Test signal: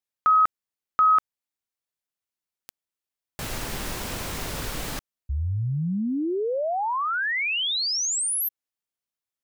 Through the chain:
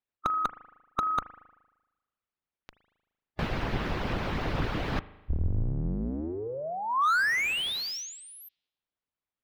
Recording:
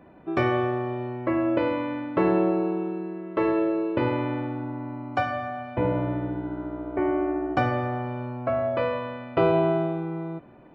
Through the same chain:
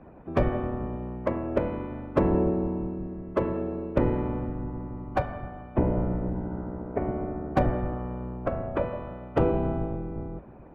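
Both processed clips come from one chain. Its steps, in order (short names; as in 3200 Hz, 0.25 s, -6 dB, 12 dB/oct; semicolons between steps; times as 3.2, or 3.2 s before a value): octaver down 2 oct, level -3 dB; harmonic-percussive split harmonic -18 dB; air absorption 320 m; spring tank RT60 1.1 s, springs 38 ms, chirp 80 ms, DRR 16 dB; slew limiter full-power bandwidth 40 Hz; gain +8 dB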